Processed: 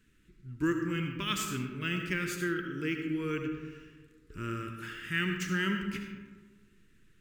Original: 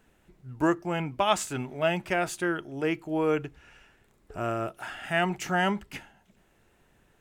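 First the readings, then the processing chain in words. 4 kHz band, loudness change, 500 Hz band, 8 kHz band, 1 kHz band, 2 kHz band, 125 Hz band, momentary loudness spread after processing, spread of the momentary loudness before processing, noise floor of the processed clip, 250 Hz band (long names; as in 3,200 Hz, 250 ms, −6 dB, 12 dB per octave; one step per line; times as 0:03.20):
−1.5 dB, −5.0 dB, −10.0 dB, −3.5 dB, −11.5 dB, −2.5 dB, −1.0 dB, 16 LU, 12 LU, −64 dBFS, −2.0 dB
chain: Butterworth band-reject 720 Hz, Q 0.64
comb and all-pass reverb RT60 1.5 s, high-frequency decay 0.4×, pre-delay 35 ms, DRR 4 dB
linearly interpolated sample-rate reduction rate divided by 2×
level −2 dB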